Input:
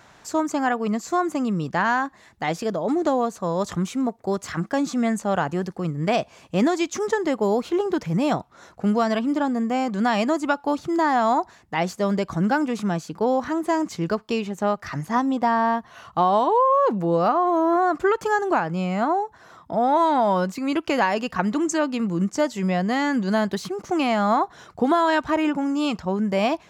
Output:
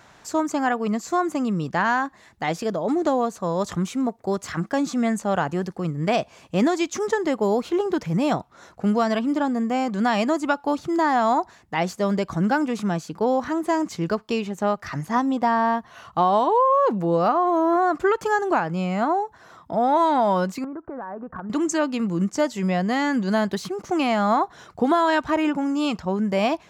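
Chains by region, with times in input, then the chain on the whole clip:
0:20.64–0:21.50: noise gate −40 dBFS, range −6 dB + Butterworth low-pass 1,600 Hz 48 dB per octave + downward compressor 8 to 1, threshold −30 dBFS
whole clip: no processing

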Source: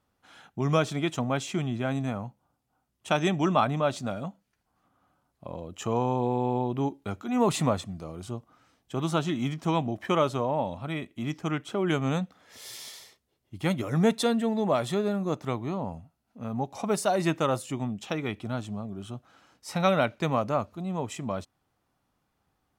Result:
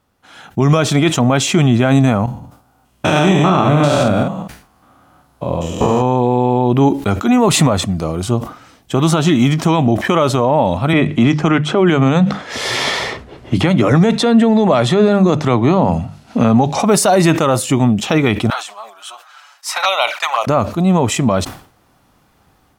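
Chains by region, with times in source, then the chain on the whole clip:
0:02.26–0:06.02: spectrum averaged block by block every 200 ms + double-tracking delay 48 ms −5 dB
0:10.93–0:16.80: high-frequency loss of the air 69 metres + mains-hum notches 50/100/150/200 Hz + multiband upward and downward compressor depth 70%
0:18.50–0:20.47: high-pass filter 870 Hz 24 dB per octave + flanger swept by the level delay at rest 7.7 ms, full sweep at −27 dBFS
whole clip: automatic gain control gain up to 10 dB; boost into a limiter +13 dB; level that may fall only so fast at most 120 dB per second; level −2.5 dB

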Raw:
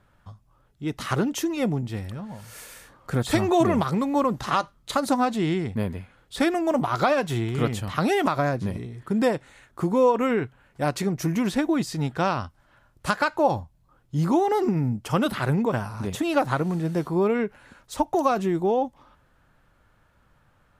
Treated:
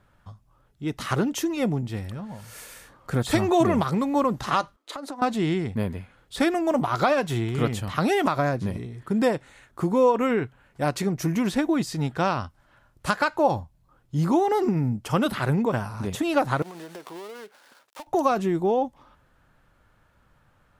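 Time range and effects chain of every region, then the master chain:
0:04.76–0:05.22: elliptic high-pass filter 270 Hz + high-shelf EQ 5,200 Hz −9 dB + downward compressor 8 to 1, threshold −31 dBFS
0:16.62–0:18.07: gap after every zero crossing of 0.19 ms + high-pass filter 480 Hz + downward compressor 12 to 1, threshold −35 dBFS
whole clip: no processing

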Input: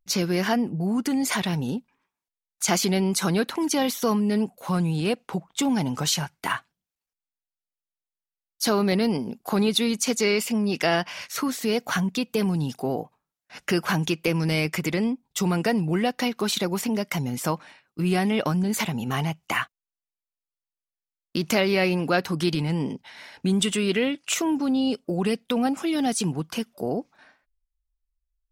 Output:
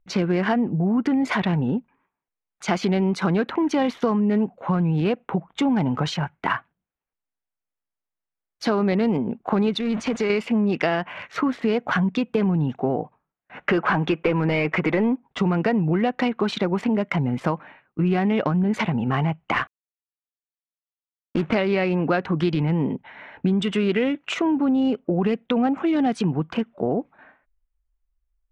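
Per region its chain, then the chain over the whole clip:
0:09.80–0:10.30: converter with a step at zero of −28 dBFS + low-pass filter 10,000 Hz + downward compressor 4 to 1, threshold −24 dBFS
0:13.58–0:15.39: one scale factor per block 7 bits + mid-hump overdrive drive 17 dB, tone 1,400 Hz, clips at −9 dBFS
0:19.54–0:21.54: variable-slope delta modulation 32 kbit/s + log-companded quantiser 4 bits
whole clip: adaptive Wiener filter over 9 samples; downward compressor, threshold −23 dBFS; low-pass filter 2,600 Hz 12 dB per octave; level +6 dB

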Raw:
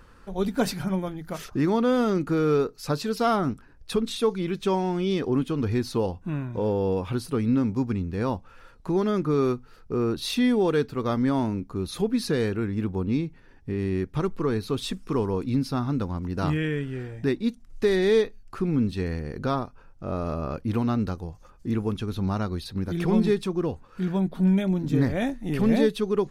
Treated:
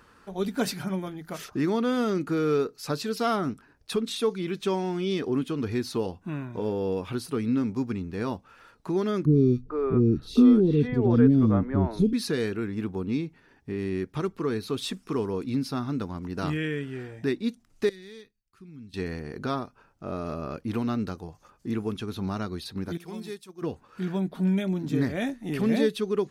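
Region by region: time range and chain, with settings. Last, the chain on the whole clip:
0:09.25–0:12.13: spectral tilt −4.5 dB per octave + three-band delay without the direct sound lows, highs, mids 50/450 ms, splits 430/2,800 Hz
0:17.89–0:18.94: downward expander −40 dBFS + guitar amp tone stack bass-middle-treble 6-0-2
0:22.97–0:23.62: noise gate −26 dBFS, range −7 dB + first-order pre-emphasis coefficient 0.8
whole clip: high-pass filter 210 Hz 6 dB per octave; notch filter 520 Hz, Q 12; dynamic equaliser 870 Hz, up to −5 dB, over −40 dBFS, Q 1.5

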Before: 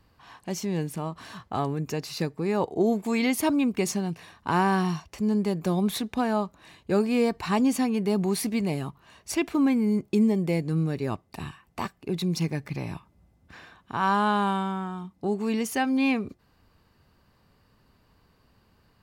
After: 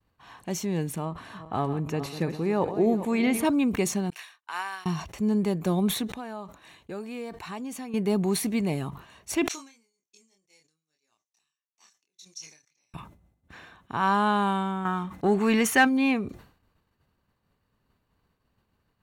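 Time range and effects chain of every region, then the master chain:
0:01.05–0:03.45: feedback delay that plays each chunk backwards 202 ms, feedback 53%, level −12 dB + low-pass filter 12,000 Hz 24 dB per octave + parametric band 6,500 Hz −8 dB 1.5 octaves
0:04.10–0:04.86: high-pass filter 1,400 Hz + expander for the loud parts 2.5 to 1, over −50 dBFS
0:06.07–0:07.94: low-shelf EQ 360 Hz −6 dB + downward compressor 2 to 1, threshold −41 dBFS
0:09.48–0:12.94: resonant band-pass 6,000 Hz, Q 7 + double-tracking delay 26 ms −3.5 dB
0:14.85–0:15.85: parametric band 1,600 Hz +9.5 dB 1.6 octaves + leveller curve on the samples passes 1
whole clip: notch filter 4,900 Hz, Q 5.4; downward expander −54 dBFS; level that may fall only so fast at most 110 dB per second

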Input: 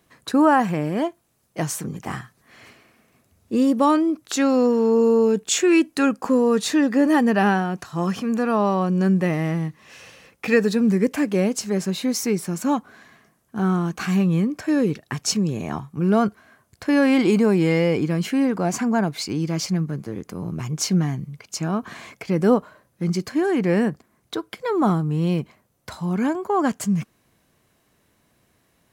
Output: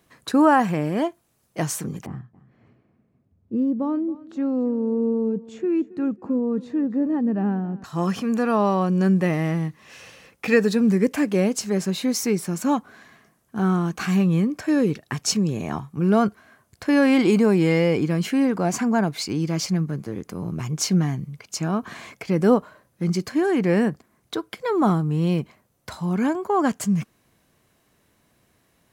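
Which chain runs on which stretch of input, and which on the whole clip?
0:02.06–0:07.84: resonant band-pass 130 Hz, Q 0.74 + repeating echo 273 ms, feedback 36%, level −19.5 dB
whole clip: no processing

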